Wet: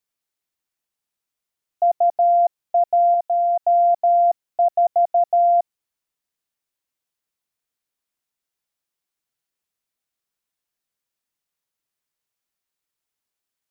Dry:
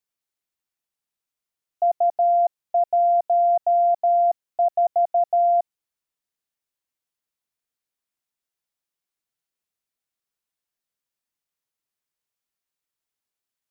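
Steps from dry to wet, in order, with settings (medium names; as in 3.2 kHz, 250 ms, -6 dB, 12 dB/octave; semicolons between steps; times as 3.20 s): 3.14–3.63 s: bass shelf 480 Hz -10 dB; trim +2.5 dB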